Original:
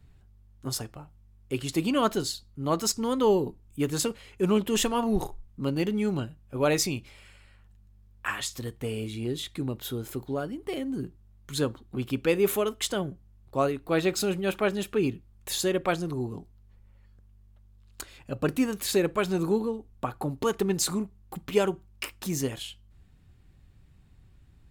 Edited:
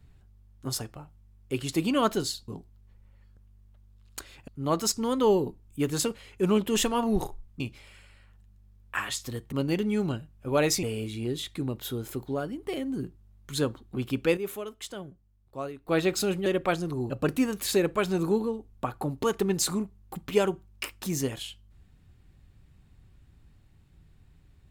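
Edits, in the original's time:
5.6–6.91 move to 8.83
12.37–13.88 gain -10 dB
14.46–15.66 cut
16.3–18.3 move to 2.48

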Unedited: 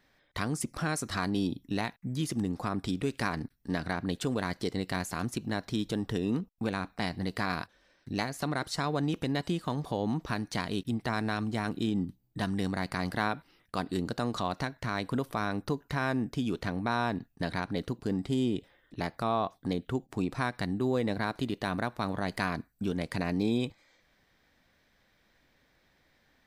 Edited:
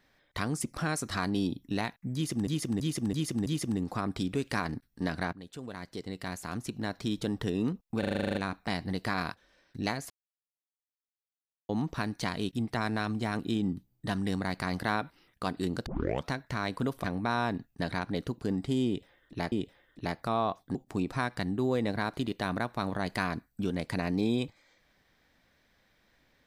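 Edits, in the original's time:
2.14–2.47 loop, 5 plays
4.01–5.92 fade in, from -16.5 dB
6.67 stutter 0.04 s, 10 plays
8.42–10.01 mute
14.18 tape start 0.42 s
15.36–16.65 cut
18.47–19.13 loop, 2 plays
19.7–19.97 cut

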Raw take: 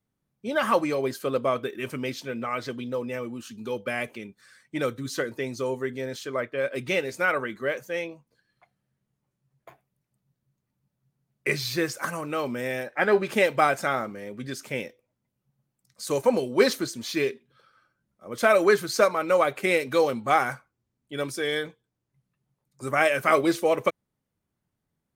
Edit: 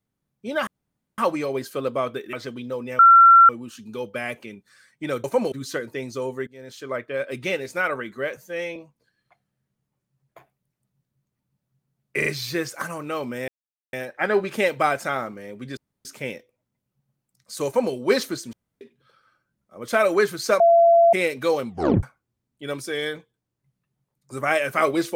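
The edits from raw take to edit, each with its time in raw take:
0.67 insert room tone 0.51 s
1.82–2.55 cut
3.21 add tone 1360 Hz -7.5 dBFS 0.50 s
5.91–6.37 fade in, from -24 dB
7.81–8.07 stretch 1.5×
11.49 stutter 0.04 s, 3 plays
12.71 insert silence 0.45 s
14.55 insert room tone 0.28 s
16.16–16.44 copy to 4.96
17.03–17.31 room tone
19.1–19.63 bleep 678 Hz -11 dBFS
20.18 tape stop 0.35 s

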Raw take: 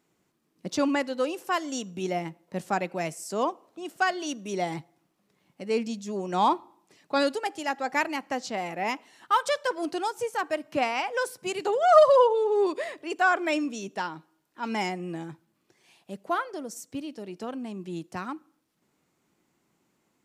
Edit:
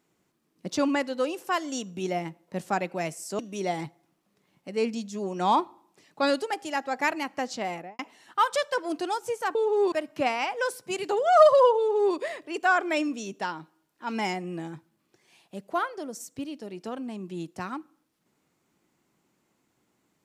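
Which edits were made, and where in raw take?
3.39–4.32 cut
8.63–8.92 studio fade out
12.34–12.71 copy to 10.48

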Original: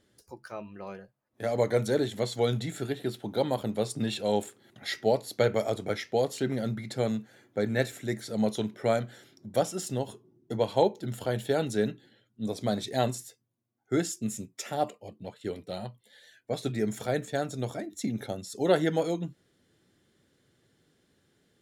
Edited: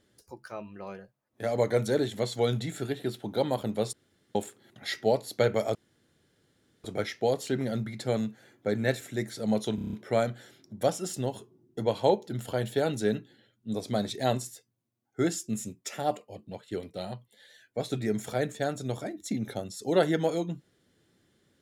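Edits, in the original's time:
3.93–4.35 room tone
5.75 insert room tone 1.09 s
8.66 stutter 0.03 s, 7 plays

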